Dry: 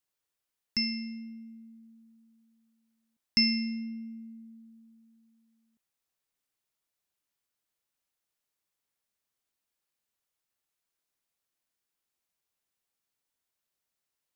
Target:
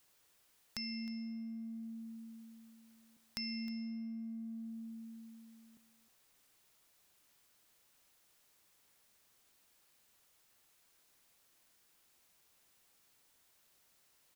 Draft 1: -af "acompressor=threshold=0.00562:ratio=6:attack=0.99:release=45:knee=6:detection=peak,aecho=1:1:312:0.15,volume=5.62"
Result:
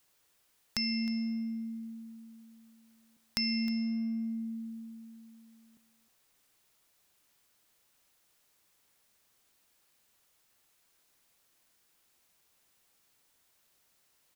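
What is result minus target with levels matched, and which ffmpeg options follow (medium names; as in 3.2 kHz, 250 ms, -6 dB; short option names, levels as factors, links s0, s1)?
compression: peak gain reduction -9.5 dB
-af "acompressor=threshold=0.0015:ratio=6:attack=0.99:release=45:knee=6:detection=peak,aecho=1:1:312:0.15,volume=5.62"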